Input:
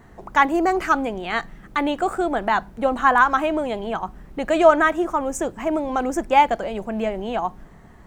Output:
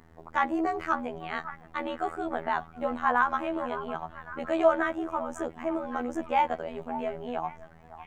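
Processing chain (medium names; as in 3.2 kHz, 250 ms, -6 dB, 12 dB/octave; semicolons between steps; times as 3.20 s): word length cut 10-bit, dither none; treble shelf 4.5 kHz -12 dB; repeats whose band climbs or falls 557 ms, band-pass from 1 kHz, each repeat 0.7 oct, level -12 dB; robot voice 81.3 Hz; trim -6 dB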